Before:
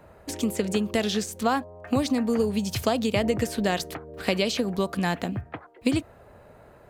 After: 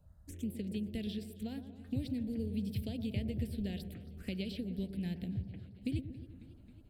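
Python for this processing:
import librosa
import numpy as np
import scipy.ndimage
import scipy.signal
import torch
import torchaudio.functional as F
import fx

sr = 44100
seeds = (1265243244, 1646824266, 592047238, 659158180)

y = fx.tone_stack(x, sr, knobs='10-0-1')
y = fx.env_phaser(y, sr, low_hz=320.0, high_hz=1200.0, full_db=-46.5)
y = fx.echo_bbd(y, sr, ms=117, stages=1024, feedback_pct=61, wet_db=-10)
y = fx.echo_warbled(y, sr, ms=272, feedback_pct=77, rate_hz=2.8, cents=115, wet_db=-20.5)
y = F.gain(torch.from_numpy(y), 6.0).numpy()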